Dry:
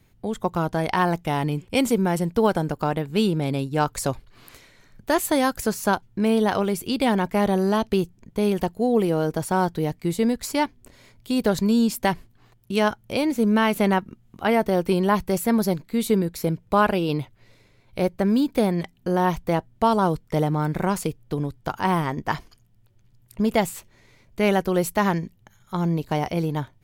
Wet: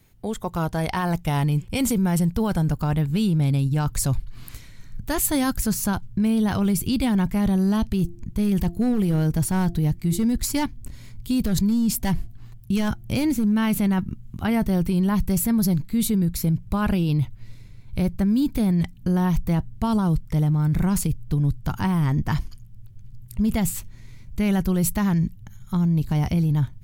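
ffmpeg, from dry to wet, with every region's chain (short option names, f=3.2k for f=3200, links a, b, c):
-filter_complex "[0:a]asettb=1/sr,asplit=3[a][b][c];[a]atrim=end=7.994[d];[b]atrim=start=7.99:end=13.52,asetpts=PTS-STARTPTS,afade=t=in:d=0.004:c=qsin,afade=t=out:st=5.526:d=0.004:c=qsin,bandreject=f=344:t=h:w=4,bandreject=f=688:t=h:w=4,asoftclip=type=hard:threshold=-15dB[e];[c]atrim=start=13.516[f];[d][e]acrossfade=d=0.004:c1=hsin:c2=qsin[g];[g][f]acrossfade=d=0.004:c1=qsin:c2=hsin,asubboost=boost=9:cutoff=160,alimiter=limit=-15.5dB:level=0:latency=1:release=11,highshelf=f=5.6k:g=7.5"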